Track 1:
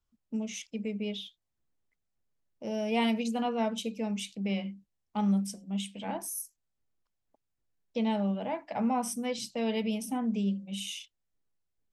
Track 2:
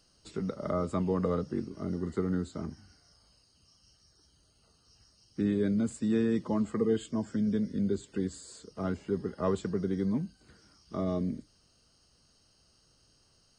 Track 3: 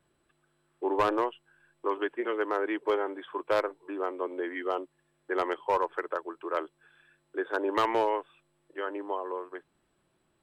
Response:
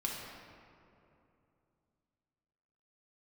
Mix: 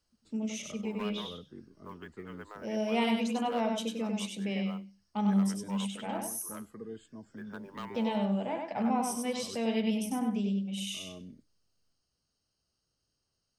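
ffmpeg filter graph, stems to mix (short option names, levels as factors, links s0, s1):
-filter_complex "[0:a]volume=0.841,asplit=3[s0][s1][s2];[s1]volume=0.631[s3];[1:a]volume=0.168[s4];[2:a]equalizer=f=200:w=0.31:g=-11.5,acrusher=bits=7:mode=log:mix=0:aa=0.000001,volume=0.224[s5];[s2]apad=whole_len=599100[s6];[s4][s6]sidechaincompress=threshold=0.00631:ratio=8:attack=16:release=172[s7];[s3]aecho=0:1:97|194|291:1|0.18|0.0324[s8];[s0][s7][s5][s8]amix=inputs=4:normalize=0"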